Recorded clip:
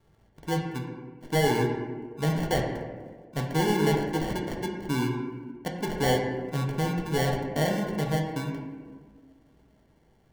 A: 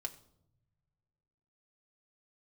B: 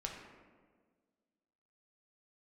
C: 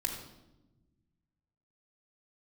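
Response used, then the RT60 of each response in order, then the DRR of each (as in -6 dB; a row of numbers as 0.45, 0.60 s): B; not exponential, 1.6 s, 1.0 s; 2.0, -0.5, -1.5 dB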